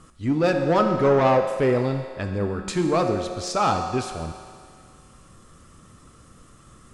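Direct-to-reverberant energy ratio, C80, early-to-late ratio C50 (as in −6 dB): 4.0 dB, 7.0 dB, 6.0 dB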